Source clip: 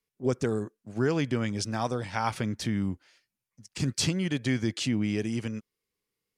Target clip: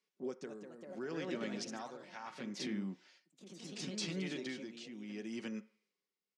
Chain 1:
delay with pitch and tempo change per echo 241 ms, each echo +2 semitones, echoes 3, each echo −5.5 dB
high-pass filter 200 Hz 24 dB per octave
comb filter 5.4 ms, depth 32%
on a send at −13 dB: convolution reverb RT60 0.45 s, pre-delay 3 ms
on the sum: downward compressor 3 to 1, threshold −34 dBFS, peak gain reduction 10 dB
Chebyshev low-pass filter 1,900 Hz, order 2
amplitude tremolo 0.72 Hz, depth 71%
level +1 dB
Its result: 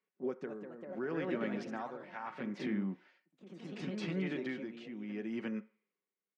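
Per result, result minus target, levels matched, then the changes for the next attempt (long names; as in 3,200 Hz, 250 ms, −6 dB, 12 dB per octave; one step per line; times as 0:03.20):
4,000 Hz band −10.0 dB; downward compressor: peak gain reduction −4 dB
change: Chebyshev low-pass filter 5,500 Hz, order 2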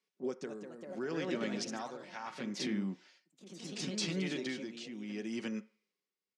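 downward compressor: peak gain reduction −4 dB
change: downward compressor 3 to 1, threshold −40 dBFS, peak gain reduction 14 dB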